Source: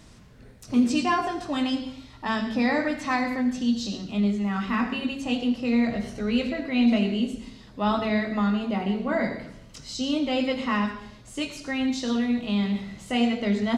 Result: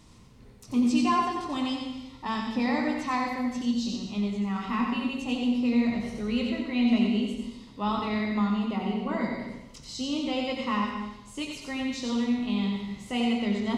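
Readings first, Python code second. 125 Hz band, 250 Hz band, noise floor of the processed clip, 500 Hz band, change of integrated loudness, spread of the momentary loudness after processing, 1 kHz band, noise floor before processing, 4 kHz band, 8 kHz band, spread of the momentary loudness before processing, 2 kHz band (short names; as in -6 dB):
-3.0 dB, -2.0 dB, -50 dBFS, -4.5 dB, -2.5 dB, 10 LU, -1.0 dB, -49 dBFS, -2.5 dB, n/a, 9 LU, -4.5 dB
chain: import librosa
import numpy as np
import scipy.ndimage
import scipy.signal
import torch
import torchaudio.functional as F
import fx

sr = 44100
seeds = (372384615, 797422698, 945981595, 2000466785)

y = fx.graphic_eq_31(x, sr, hz=(630, 1000, 1600), db=(-6, 5, -9))
y = y + 10.0 ** (-5.5 / 20.0) * np.pad(y, (int(90 * sr / 1000.0), 0))[:len(y)]
y = fx.rev_plate(y, sr, seeds[0], rt60_s=0.64, hf_ratio=0.9, predelay_ms=110, drr_db=8.0)
y = F.gain(torch.from_numpy(y), -4.0).numpy()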